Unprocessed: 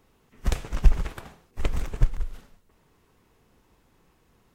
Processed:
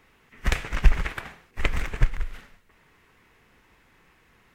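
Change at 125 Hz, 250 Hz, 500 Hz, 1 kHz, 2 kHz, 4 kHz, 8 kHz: 0.0 dB, +0.5 dB, +1.0 dB, +5.0 dB, +11.5 dB, +6.0 dB, no reading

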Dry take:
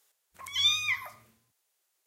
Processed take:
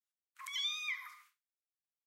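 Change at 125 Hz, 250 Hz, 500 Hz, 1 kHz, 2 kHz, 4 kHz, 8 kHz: under -40 dB, no reading, under -35 dB, -8.5 dB, -9.0 dB, -11.5 dB, -11.5 dB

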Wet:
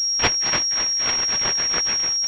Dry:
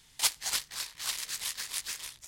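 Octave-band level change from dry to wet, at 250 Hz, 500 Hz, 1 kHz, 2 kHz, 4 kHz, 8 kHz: +25.5 dB, +22.5 dB, +15.5 dB, +13.5 dB, +16.0 dB, no reading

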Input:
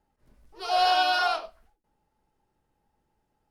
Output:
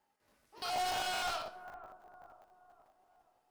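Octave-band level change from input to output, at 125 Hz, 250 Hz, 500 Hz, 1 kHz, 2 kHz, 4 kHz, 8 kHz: no reading, -7.0 dB, -11.0 dB, -12.5 dB, -12.0 dB, -10.5 dB, +2.0 dB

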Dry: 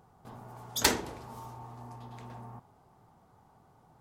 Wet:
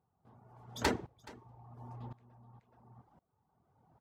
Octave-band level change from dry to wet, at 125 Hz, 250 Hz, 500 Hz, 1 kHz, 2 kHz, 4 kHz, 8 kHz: -2.5 dB, -2.0 dB, -3.0 dB, -5.0 dB, -6.0 dB, -11.0 dB, -15.5 dB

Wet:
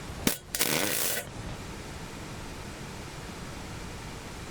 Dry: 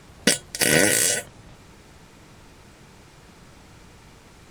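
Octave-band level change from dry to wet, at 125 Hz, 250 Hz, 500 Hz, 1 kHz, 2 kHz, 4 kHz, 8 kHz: -2.5 dB, -6.5 dB, -9.5 dB, -2.0 dB, -10.0 dB, -7.5 dB, -9.5 dB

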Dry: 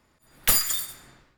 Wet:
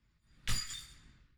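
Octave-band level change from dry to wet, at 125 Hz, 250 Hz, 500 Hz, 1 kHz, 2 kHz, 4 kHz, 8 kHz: -2.5 dB, -9.5 dB, -21.0 dB, -15.5 dB, -12.5 dB, -11.5 dB, -17.5 dB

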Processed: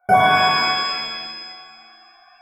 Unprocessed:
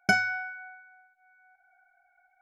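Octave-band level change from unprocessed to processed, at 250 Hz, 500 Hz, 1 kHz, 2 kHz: +7.5 dB, +17.0 dB, +20.0 dB, +6.5 dB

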